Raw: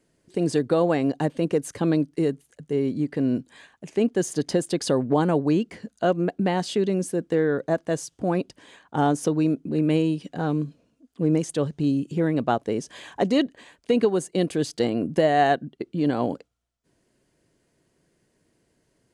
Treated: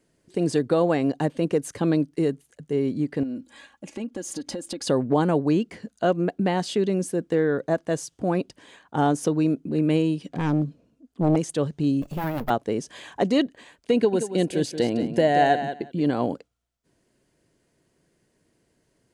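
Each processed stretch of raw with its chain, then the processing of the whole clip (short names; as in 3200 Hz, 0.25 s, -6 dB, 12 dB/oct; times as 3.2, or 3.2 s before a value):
3.23–4.87 notch 1800 Hz, Q 13 + comb 3.6 ms, depth 68% + compressor 5:1, threshold -29 dBFS
10.27–11.36 self-modulated delay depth 0.65 ms + tilt shelf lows +4 dB, about 770 Hz
12.02–12.5 minimum comb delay 1.1 ms + careless resampling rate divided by 3×, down none, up hold
13.95–16.02 Butterworth band-stop 1200 Hz, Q 4.3 + feedback echo 0.179 s, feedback 15%, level -10 dB
whole clip: dry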